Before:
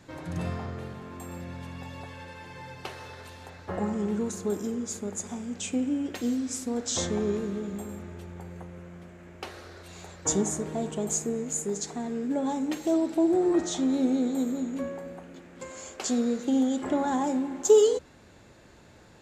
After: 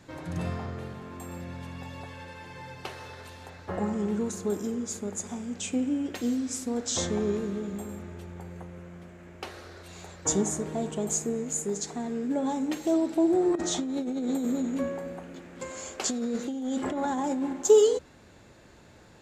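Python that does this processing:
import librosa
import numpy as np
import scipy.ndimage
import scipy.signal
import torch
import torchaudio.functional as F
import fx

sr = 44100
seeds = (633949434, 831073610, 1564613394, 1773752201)

y = fx.over_compress(x, sr, threshold_db=-29.0, ratio=-1.0, at=(13.55, 17.53))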